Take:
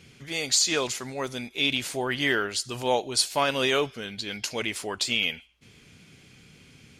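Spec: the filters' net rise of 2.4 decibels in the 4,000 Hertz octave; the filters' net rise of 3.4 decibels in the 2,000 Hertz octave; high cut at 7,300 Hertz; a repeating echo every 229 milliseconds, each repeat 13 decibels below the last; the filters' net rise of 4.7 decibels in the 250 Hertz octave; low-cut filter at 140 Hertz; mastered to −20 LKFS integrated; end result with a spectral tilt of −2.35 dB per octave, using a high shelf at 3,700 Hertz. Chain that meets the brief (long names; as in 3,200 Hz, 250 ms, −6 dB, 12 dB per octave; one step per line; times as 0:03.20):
high-pass filter 140 Hz
low-pass filter 7,300 Hz
parametric band 250 Hz +6 dB
parametric band 2,000 Hz +4.5 dB
high-shelf EQ 3,700 Hz −7.5 dB
parametric band 4,000 Hz +6.5 dB
repeating echo 229 ms, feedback 22%, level −13 dB
level +4 dB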